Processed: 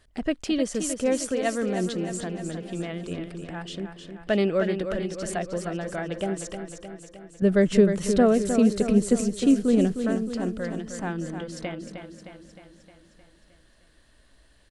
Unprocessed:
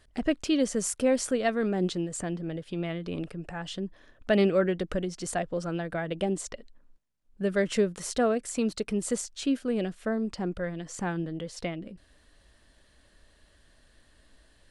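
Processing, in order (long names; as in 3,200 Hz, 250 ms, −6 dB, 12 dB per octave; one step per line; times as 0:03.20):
0:07.42–0:09.97: low-shelf EQ 460 Hz +11 dB
repeating echo 309 ms, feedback 59%, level −8 dB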